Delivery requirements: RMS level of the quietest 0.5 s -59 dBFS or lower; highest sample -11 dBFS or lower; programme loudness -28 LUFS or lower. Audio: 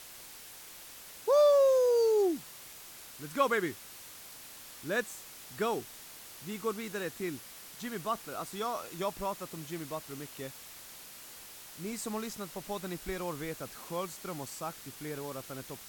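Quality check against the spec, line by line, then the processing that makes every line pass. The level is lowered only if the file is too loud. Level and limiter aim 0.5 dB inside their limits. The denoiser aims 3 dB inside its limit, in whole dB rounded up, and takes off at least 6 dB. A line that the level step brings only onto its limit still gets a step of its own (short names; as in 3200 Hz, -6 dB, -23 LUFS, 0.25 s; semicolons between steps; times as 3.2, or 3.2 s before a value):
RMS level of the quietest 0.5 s -49 dBFS: fail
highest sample -14.5 dBFS: OK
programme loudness -33.0 LUFS: OK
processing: denoiser 13 dB, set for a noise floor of -49 dBFS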